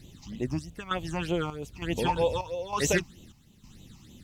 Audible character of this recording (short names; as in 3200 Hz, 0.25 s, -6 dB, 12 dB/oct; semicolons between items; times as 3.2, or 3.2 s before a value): chopped level 1.1 Hz, depth 65%, duty 65%; phasing stages 8, 3.2 Hz, lowest notch 460–1600 Hz; a quantiser's noise floor 12-bit, dither none; AAC